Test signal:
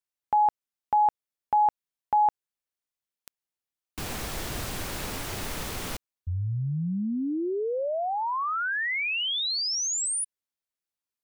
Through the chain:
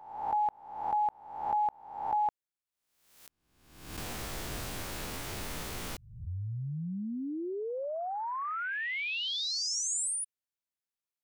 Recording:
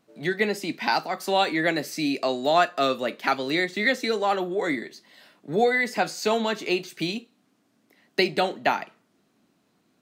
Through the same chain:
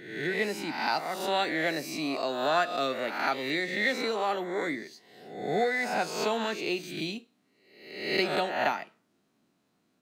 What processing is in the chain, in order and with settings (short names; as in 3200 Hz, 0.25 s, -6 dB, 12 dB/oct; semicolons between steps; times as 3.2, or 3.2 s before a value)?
spectral swells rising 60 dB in 0.82 s; gain -7.5 dB